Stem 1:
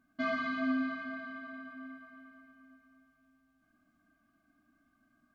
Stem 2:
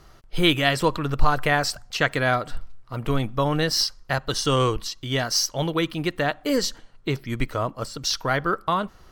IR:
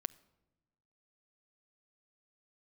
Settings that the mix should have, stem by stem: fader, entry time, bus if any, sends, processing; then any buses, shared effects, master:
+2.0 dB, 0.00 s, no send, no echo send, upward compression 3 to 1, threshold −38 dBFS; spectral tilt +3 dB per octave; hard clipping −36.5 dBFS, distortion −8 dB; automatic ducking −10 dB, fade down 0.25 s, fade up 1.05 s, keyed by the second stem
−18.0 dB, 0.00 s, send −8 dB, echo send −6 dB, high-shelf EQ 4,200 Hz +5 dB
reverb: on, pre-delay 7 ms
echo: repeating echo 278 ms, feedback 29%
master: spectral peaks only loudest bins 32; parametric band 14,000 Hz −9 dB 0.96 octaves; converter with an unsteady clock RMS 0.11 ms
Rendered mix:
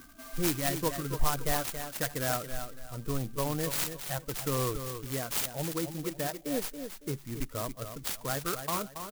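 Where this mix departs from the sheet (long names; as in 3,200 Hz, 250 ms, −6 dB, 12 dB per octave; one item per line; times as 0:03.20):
stem 2 −18.0 dB → −12.0 dB
master: missing parametric band 14,000 Hz −9 dB 0.96 octaves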